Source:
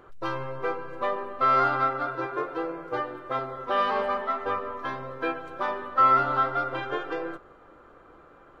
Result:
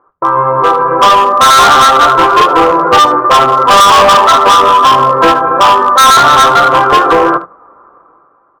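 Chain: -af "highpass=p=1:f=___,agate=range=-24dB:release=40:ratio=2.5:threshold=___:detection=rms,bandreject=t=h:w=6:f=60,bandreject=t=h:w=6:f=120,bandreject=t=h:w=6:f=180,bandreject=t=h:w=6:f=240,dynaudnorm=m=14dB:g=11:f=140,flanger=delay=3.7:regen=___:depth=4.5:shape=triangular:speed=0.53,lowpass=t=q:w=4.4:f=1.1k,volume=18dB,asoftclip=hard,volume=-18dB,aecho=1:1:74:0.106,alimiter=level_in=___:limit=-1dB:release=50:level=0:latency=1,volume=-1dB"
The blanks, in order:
140, -41dB, -71, 23.5dB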